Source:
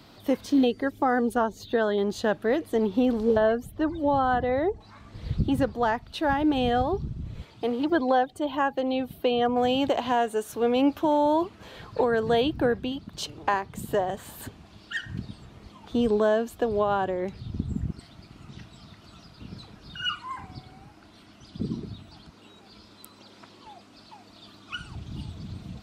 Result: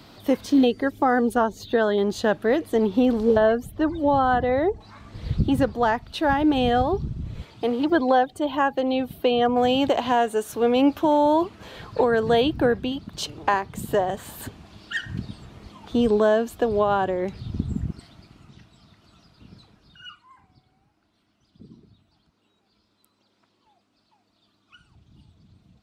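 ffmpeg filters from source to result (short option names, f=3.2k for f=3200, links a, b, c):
-af "volume=3.5dB,afade=t=out:st=17.61:d=0.99:silence=0.334965,afade=t=out:st=19.5:d=0.73:silence=0.298538"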